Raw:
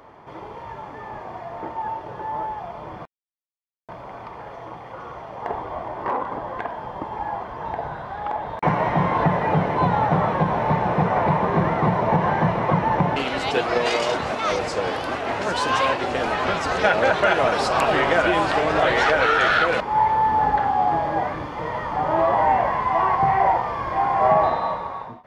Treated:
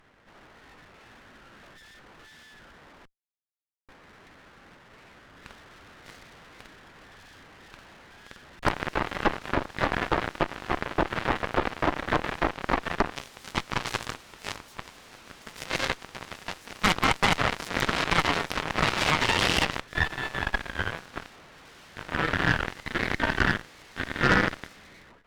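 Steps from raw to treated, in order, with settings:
full-wave rectification
harmonic generator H 3 −14 dB, 6 −15 dB, 8 −15 dB, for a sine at −5.5 dBFS

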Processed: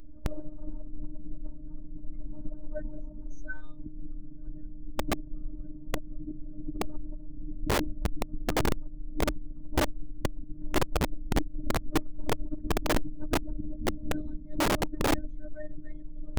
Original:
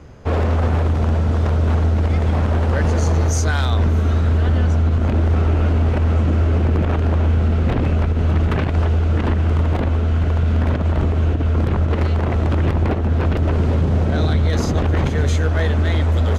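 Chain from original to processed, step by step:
expanding power law on the bin magnitudes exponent 2.8
phases set to zero 304 Hz
wrap-around overflow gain 24.5 dB
level +4 dB

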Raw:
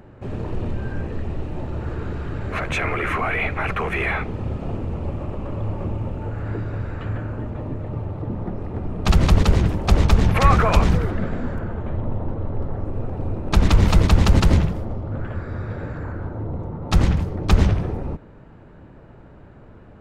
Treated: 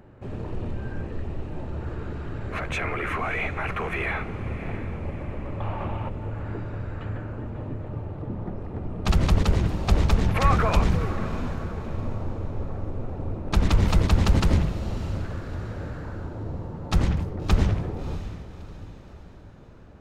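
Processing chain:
0:05.60–0:06.09: flat-topped bell 1,600 Hz +10.5 dB 2.8 octaves
feedback delay with all-pass diffusion 637 ms, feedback 45%, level −13.5 dB
level −5 dB

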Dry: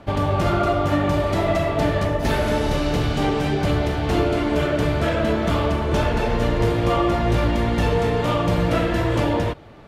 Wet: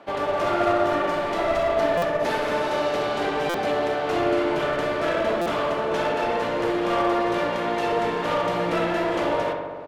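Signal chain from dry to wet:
high-pass filter 390 Hz 12 dB per octave
high-shelf EQ 5,200 Hz −9 dB
asymmetric clip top −25 dBFS
on a send: feedback echo with a low-pass in the loop 63 ms, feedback 80%, low-pass 2,900 Hz, level −5.5 dB
on the sum: downsampling to 32,000 Hz
buffer that repeats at 0:01.97/0:03.49/0:05.41, samples 256, times 8

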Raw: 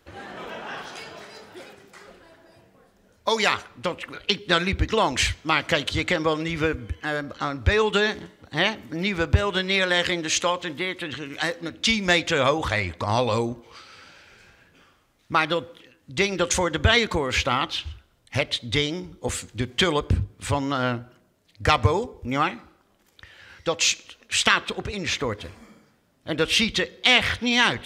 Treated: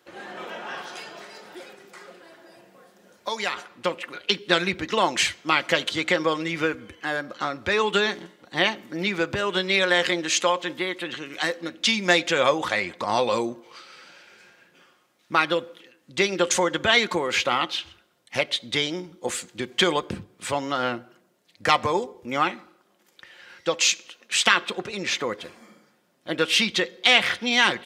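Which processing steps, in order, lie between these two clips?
high-pass filter 230 Hz 12 dB per octave
comb filter 5.6 ms, depth 34%
0:01.45–0:03.57: multiband upward and downward compressor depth 40%

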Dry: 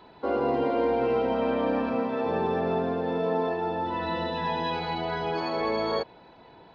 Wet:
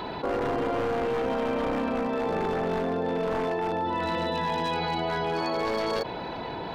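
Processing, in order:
wavefolder on the positive side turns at −23 dBFS
envelope flattener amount 70%
level −2 dB

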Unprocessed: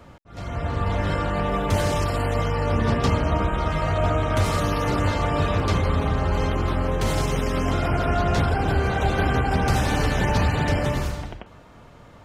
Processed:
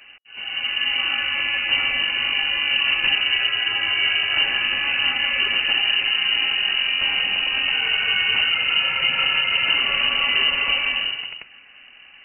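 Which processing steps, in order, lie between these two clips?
voice inversion scrambler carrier 2,900 Hz

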